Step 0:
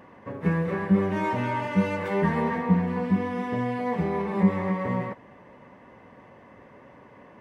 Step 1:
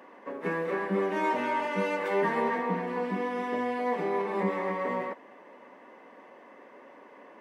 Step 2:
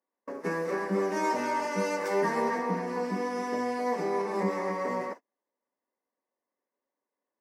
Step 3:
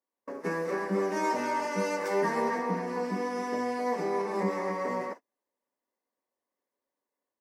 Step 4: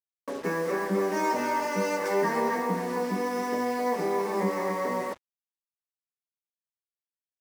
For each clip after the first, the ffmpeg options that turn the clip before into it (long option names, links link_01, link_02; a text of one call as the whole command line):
ffmpeg -i in.wav -af "highpass=frequency=270:width=0.5412,highpass=frequency=270:width=1.3066" out.wav
ffmpeg -i in.wav -af "agate=range=-38dB:threshold=-39dB:ratio=16:detection=peak,highshelf=frequency=4200:width_type=q:width=3:gain=8" out.wav
ffmpeg -i in.wav -af "dynaudnorm=framelen=140:gausssize=3:maxgain=4dB,volume=-4.5dB" out.wav
ffmpeg -i in.wav -filter_complex "[0:a]asplit=2[link_01][link_02];[link_02]alimiter=level_in=4dB:limit=-24dB:level=0:latency=1:release=403,volume=-4dB,volume=-3dB[link_03];[link_01][link_03]amix=inputs=2:normalize=0,acrusher=bits=6:mix=0:aa=0.5" out.wav